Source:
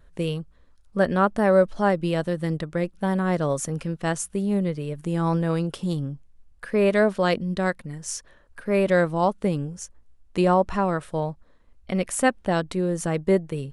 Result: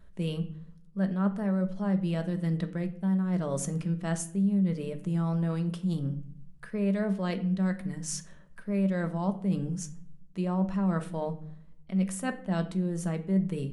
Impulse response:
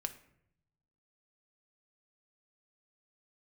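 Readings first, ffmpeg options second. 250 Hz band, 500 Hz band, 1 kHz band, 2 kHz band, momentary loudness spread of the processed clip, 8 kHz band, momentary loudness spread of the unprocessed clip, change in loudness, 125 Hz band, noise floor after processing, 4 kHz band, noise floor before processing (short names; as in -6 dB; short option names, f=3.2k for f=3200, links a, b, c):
-2.5 dB, -13.0 dB, -13.5 dB, -12.5 dB, 9 LU, -5.5 dB, 13 LU, -6.0 dB, -2.0 dB, -51 dBFS, -9.0 dB, -56 dBFS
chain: -filter_complex "[0:a]equalizer=f=190:w=4.7:g=13,areverse,acompressor=threshold=-25dB:ratio=6,areverse[a];[1:a]atrim=start_sample=2205,asetrate=52920,aresample=44100[b];[a][b]afir=irnorm=-1:irlink=0"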